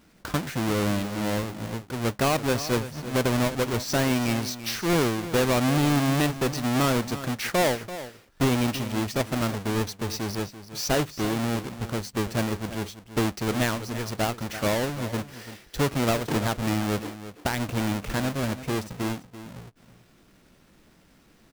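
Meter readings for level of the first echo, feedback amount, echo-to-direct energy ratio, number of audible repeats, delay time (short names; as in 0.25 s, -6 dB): -13.5 dB, no steady repeat, -13.5 dB, 1, 0.337 s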